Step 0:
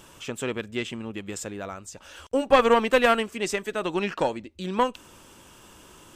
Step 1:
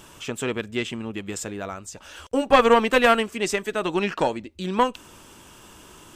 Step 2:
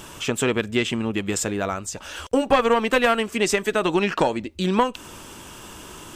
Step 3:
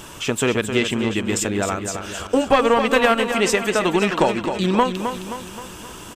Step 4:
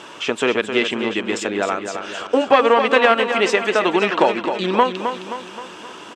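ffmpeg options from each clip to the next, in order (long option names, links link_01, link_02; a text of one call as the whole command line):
ffmpeg -i in.wav -af "bandreject=frequency=530:width=16,volume=3dB" out.wav
ffmpeg -i in.wav -af "acompressor=threshold=-24dB:ratio=3,volume=7dB" out.wav
ffmpeg -i in.wav -af "aecho=1:1:263|526|789|1052|1315|1578:0.398|0.203|0.104|0.0528|0.0269|0.0137,volume=2dB" out.wav
ffmpeg -i in.wav -af "highpass=310,lowpass=4200,volume=3dB" out.wav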